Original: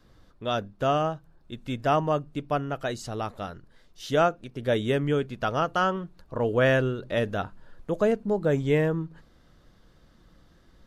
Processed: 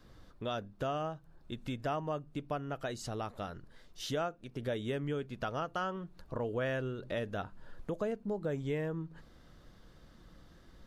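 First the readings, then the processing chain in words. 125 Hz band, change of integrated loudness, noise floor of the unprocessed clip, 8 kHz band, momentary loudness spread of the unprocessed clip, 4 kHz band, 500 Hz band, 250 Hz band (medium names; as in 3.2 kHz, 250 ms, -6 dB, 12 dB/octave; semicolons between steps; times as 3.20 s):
-10.0 dB, -11.0 dB, -58 dBFS, -5.5 dB, 14 LU, -9.0 dB, -11.0 dB, -10.0 dB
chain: compression 2.5:1, threshold -38 dBFS, peak gain reduction 14 dB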